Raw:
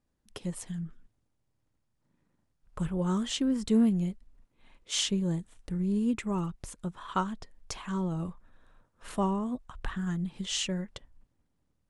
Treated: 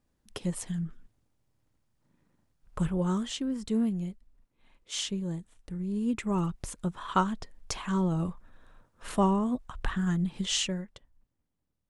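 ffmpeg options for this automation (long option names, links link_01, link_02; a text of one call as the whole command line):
ffmpeg -i in.wav -af "volume=11.5dB,afade=type=out:start_time=2.79:duration=0.59:silence=0.421697,afade=type=in:start_time=5.91:duration=0.61:silence=0.398107,afade=type=out:start_time=10.5:duration=0.42:silence=0.281838" out.wav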